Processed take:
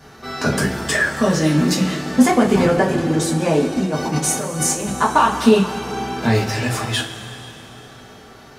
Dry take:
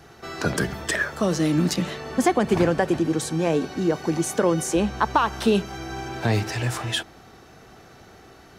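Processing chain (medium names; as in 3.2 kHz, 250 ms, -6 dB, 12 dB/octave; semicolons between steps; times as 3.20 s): 3.76–4.89 s: compressor with a negative ratio -27 dBFS, ratio -1; two-slope reverb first 0.23 s, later 3.3 s, from -19 dB, DRR -4.5 dB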